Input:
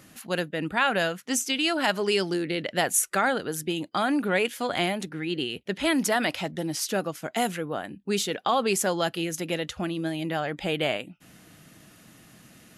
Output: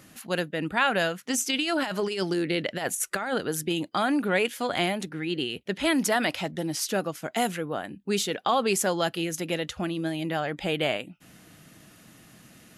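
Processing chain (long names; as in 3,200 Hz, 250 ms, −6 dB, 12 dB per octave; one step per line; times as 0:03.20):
0:01.21–0:03.95: compressor whose output falls as the input rises −26 dBFS, ratio −0.5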